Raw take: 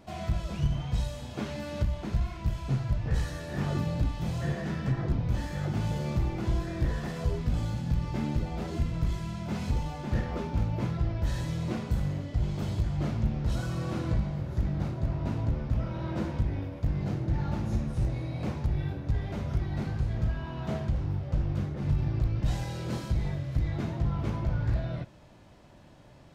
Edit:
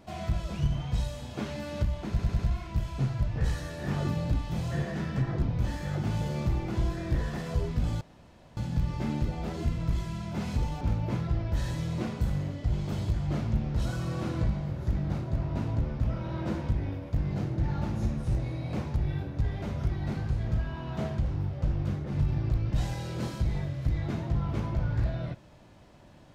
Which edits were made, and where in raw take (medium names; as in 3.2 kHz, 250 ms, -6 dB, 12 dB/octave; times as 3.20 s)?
2.09 s: stutter 0.10 s, 4 plays
7.71 s: insert room tone 0.56 s
9.95–10.51 s: delete